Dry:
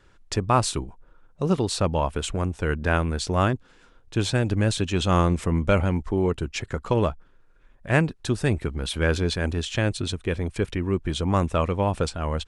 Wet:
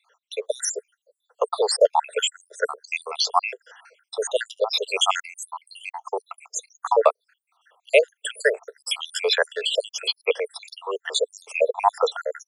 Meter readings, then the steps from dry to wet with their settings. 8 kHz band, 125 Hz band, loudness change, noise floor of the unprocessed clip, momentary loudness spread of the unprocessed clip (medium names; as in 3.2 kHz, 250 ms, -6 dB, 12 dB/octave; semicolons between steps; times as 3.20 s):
+4.5 dB, under -40 dB, +1.0 dB, -56 dBFS, 7 LU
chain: random holes in the spectrogram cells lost 79%; steep high-pass 440 Hz 96 dB/octave; level rider gain up to 9 dB; trim +3.5 dB